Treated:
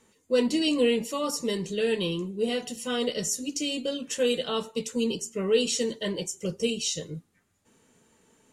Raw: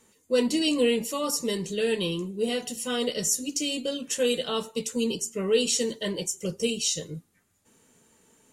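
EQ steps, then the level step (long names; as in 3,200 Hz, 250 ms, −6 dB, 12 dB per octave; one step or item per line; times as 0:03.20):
high-shelf EQ 8,700 Hz −10.5 dB
0.0 dB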